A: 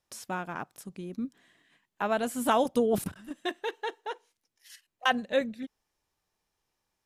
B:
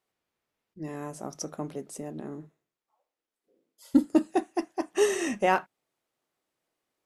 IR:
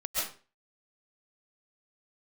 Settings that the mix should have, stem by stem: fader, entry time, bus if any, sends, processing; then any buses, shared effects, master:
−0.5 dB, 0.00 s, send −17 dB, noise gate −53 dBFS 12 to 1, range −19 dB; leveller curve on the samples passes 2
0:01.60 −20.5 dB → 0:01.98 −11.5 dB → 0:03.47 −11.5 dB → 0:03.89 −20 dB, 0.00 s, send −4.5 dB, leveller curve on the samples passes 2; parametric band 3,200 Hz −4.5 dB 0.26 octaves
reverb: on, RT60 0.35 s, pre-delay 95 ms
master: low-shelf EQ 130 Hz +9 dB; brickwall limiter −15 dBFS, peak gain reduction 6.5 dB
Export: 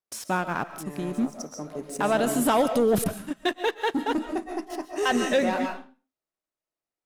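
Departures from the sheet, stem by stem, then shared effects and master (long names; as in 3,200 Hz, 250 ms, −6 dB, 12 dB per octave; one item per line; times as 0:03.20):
stem B −20.5 dB → −14.0 dB
master: missing low-shelf EQ 130 Hz +9 dB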